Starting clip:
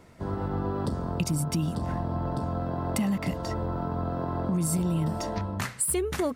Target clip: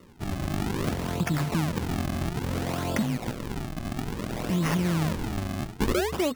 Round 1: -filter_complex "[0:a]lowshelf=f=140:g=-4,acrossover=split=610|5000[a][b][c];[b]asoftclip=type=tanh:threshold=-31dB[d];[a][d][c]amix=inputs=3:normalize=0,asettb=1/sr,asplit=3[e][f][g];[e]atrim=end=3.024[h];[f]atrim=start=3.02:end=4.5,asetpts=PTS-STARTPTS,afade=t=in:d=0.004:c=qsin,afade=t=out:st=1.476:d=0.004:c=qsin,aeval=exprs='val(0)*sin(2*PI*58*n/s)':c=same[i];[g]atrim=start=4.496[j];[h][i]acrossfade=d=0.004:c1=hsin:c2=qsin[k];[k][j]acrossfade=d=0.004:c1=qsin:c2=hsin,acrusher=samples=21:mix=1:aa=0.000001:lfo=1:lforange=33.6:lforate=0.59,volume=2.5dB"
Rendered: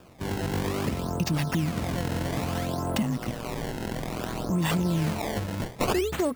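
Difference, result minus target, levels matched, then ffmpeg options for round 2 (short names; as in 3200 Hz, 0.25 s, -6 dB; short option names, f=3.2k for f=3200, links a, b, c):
decimation with a swept rate: distortion -5 dB
-filter_complex "[0:a]lowshelf=f=140:g=-4,acrossover=split=610|5000[a][b][c];[b]asoftclip=type=tanh:threshold=-31dB[d];[a][d][c]amix=inputs=3:normalize=0,asettb=1/sr,asplit=3[e][f][g];[e]atrim=end=3.024[h];[f]atrim=start=3.02:end=4.5,asetpts=PTS-STARTPTS,afade=t=in:d=0.004:c=qsin,afade=t=out:st=1.476:d=0.004:c=qsin,aeval=exprs='val(0)*sin(2*PI*58*n/s)':c=same[i];[g]atrim=start=4.496[j];[h][i]acrossfade=d=0.004:c1=hsin:c2=qsin[k];[k][j]acrossfade=d=0.004:c1=qsin:c2=hsin,acrusher=samples=53:mix=1:aa=0.000001:lfo=1:lforange=84.8:lforate=0.59,volume=2.5dB"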